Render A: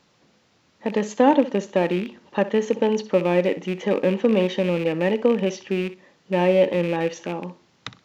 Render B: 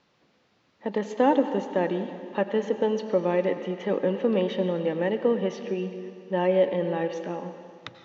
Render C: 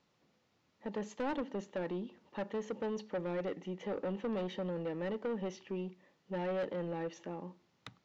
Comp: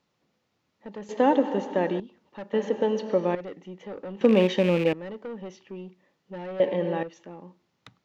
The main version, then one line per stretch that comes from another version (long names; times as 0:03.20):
C
0:01.09–0:02.00: punch in from B
0:02.53–0:03.35: punch in from B
0:04.21–0:04.93: punch in from A
0:06.60–0:07.03: punch in from B